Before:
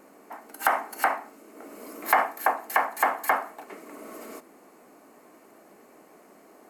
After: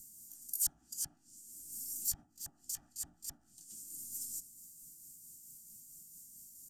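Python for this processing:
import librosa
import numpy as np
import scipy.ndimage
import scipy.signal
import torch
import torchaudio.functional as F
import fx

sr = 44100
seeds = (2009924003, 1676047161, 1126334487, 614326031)

y = fx.pitch_heads(x, sr, semitones=1.5)
y = fx.env_lowpass_down(y, sr, base_hz=750.0, full_db=-20.5)
y = scipy.signal.sosfilt(scipy.signal.ellip(3, 1.0, 50, [150.0, 6500.0], 'bandstop', fs=sr, output='sos'), y)
y = fx.peak_eq(y, sr, hz=210.0, db=-12.0, octaves=2.1)
y = F.gain(torch.from_numpy(y), 15.0).numpy()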